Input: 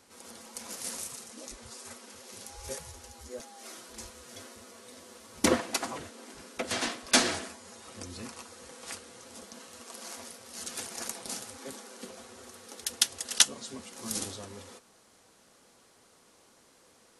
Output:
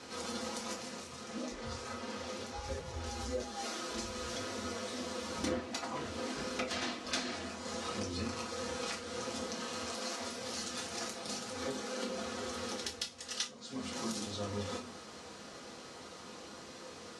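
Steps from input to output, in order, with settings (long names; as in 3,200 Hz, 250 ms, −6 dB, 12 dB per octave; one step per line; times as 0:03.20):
downward compressor 6 to 1, threshold −48 dBFS, peak gain reduction 30 dB
Chebyshev low-pass filter 5,200 Hz, order 2
0:00.73–0:03.06: high-shelf EQ 4,200 Hz −9.5 dB
high-pass filter 55 Hz
convolution reverb RT60 0.40 s, pre-delay 4 ms, DRR −1.5 dB
level +9.5 dB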